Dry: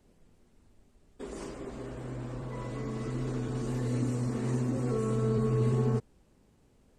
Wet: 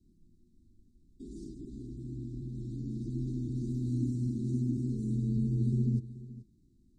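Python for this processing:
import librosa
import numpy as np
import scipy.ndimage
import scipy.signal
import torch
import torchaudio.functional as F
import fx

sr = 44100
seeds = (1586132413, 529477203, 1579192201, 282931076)

y = scipy.signal.sosfilt(scipy.signal.cheby1(5, 1.0, [350.0, 3800.0], 'bandstop', fs=sr, output='sos'), x)
y = fx.high_shelf(y, sr, hz=2200.0, db=-11.5)
y = y + 10.0 ** (-16.5 / 20.0) * np.pad(y, (int(430 * sr / 1000.0), 0))[:len(y)]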